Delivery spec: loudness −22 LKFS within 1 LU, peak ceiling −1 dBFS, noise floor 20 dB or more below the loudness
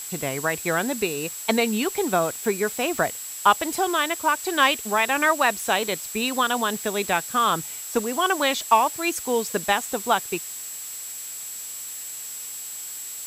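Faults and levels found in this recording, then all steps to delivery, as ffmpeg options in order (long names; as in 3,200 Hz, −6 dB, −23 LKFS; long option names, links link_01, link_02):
interfering tone 7,700 Hz; level of the tone −35 dBFS; background noise floor −35 dBFS; target noise floor −44 dBFS; integrated loudness −24.0 LKFS; sample peak −4.0 dBFS; target loudness −22.0 LKFS
→ -af "bandreject=frequency=7700:width=30"
-af "afftdn=noise_reduction=9:noise_floor=-35"
-af "volume=2dB"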